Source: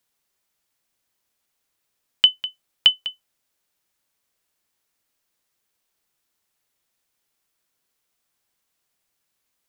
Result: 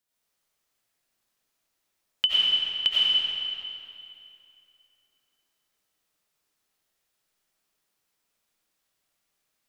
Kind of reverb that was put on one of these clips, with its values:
comb and all-pass reverb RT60 2.7 s, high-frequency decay 0.85×, pre-delay 50 ms, DRR −8.5 dB
level −9 dB

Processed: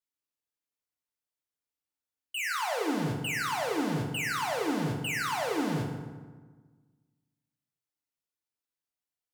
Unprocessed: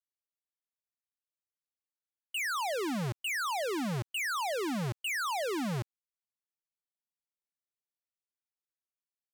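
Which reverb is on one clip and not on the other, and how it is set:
feedback delay network reverb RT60 1.4 s, low-frequency decay 1.25×, high-frequency decay 0.6×, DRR 0.5 dB
level −1 dB

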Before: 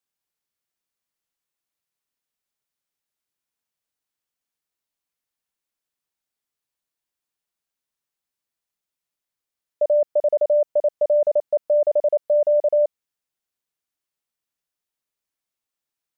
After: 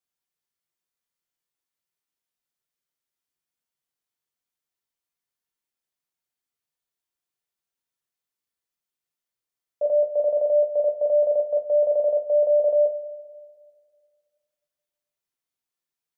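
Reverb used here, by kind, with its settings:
coupled-rooms reverb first 0.31 s, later 2 s, from −17 dB, DRR 0.5 dB
level −5.5 dB

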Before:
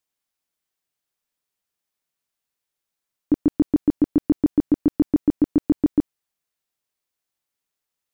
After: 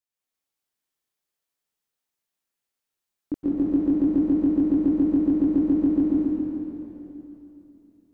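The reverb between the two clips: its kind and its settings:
dense smooth reverb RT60 3.2 s, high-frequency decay 1×, pre-delay 110 ms, DRR −8 dB
level −10 dB

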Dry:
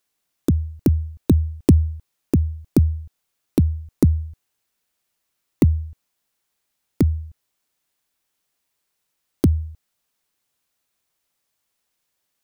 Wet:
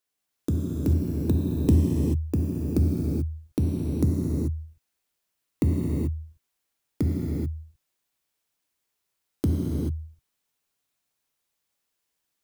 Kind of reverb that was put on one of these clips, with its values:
reverb whose tail is shaped and stops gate 460 ms flat, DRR −3.5 dB
level −9 dB

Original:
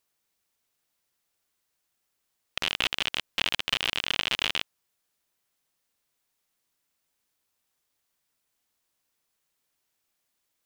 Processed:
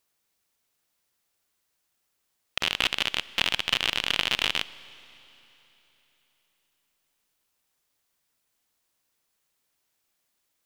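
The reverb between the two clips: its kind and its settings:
four-comb reverb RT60 3.6 s, combs from 30 ms, DRR 18 dB
level +2 dB

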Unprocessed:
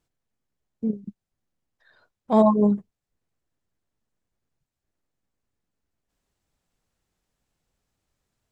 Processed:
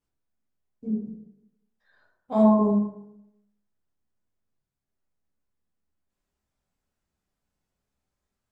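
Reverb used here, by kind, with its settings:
dense smooth reverb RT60 0.82 s, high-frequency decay 0.45×, DRR −6 dB
level −11.5 dB

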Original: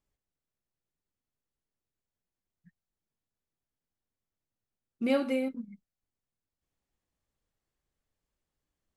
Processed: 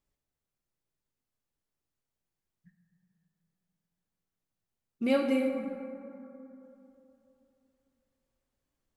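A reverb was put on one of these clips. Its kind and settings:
dense smooth reverb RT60 3.1 s, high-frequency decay 0.35×, DRR 4 dB

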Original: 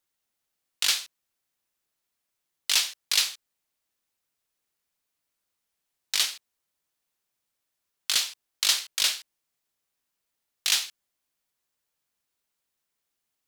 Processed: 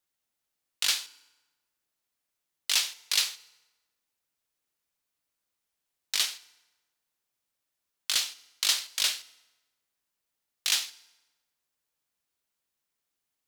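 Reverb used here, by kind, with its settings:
feedback delay network reverb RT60 1.2 s, low-frequency decay 0.95×, high-frequency decay 0.75×, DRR 17 dB
level −2.5 dB

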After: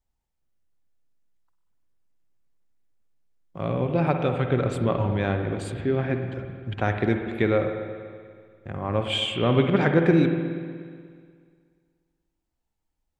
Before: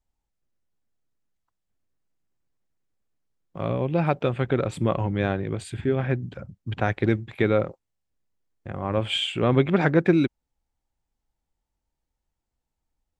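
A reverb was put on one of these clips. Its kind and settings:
spring reverb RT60 2 s, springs 48/60 ms, chirp 35 ms, DRR 5 dB
level −1 dB

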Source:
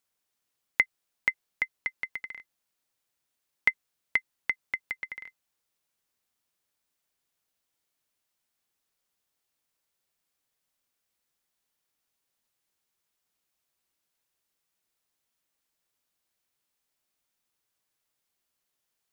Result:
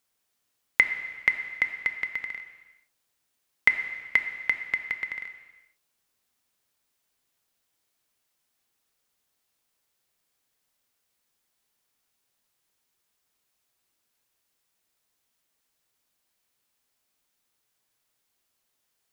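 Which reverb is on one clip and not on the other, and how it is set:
reverb whose tail is shaped and stops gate 490 ms falling, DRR 7 dB
level +4 dB

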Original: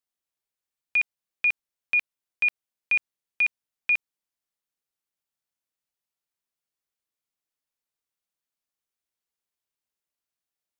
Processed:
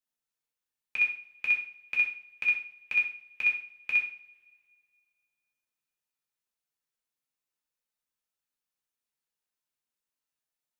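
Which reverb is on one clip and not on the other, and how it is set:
coupled-rooms reverb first 0.45 s, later 2.2 s, from −27 dB, DRR −3 dB
level −6 dB

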